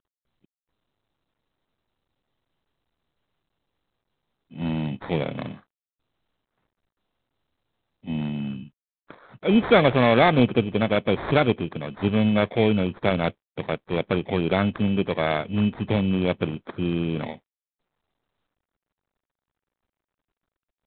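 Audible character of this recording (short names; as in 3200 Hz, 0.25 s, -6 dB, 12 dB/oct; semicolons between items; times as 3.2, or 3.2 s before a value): aliases and images of a low sample rate 2800 Hz, jitter 0%; G.726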